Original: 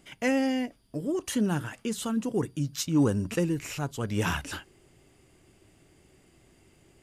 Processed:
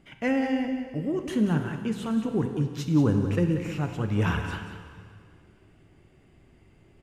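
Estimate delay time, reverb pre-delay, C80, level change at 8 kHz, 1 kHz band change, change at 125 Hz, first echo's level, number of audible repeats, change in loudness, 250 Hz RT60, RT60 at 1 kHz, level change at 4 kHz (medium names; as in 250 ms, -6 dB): 185 ms, 7 ms, 6.5 dB, -11.0 dB, +1.0 dB, +5.0 dB, -10.5 dB, 1, +2.0 dB, 2.1 s, 2.1 s, -4.0 dB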